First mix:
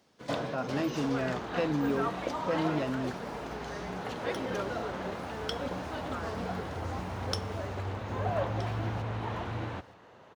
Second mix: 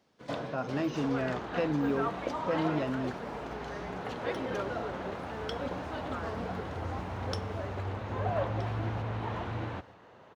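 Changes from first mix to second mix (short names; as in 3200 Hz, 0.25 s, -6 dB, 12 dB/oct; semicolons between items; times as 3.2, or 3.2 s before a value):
first sound -3.0 dB; master: add high shelf 5700 Hz -7 dB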